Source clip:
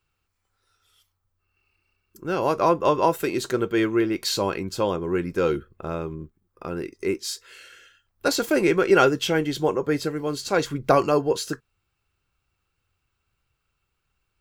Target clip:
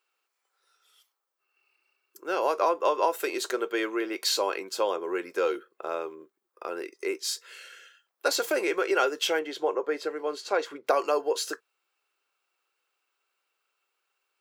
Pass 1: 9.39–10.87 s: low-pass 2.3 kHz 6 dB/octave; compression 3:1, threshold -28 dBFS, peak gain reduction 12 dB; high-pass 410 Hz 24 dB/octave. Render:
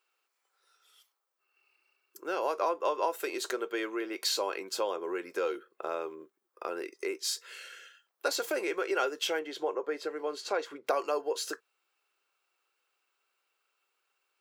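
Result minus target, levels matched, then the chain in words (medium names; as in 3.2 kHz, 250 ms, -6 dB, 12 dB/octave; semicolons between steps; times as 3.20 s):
compression: peak gain reduction +5.5 dB
9.39–10.87 s: low-pass 2.3 kHz 6 dB/octave; compression 3:1, threshold -20 dBFS, peak gain reduction 6.5 dB; high-pass 410 Hz 24 dB/octave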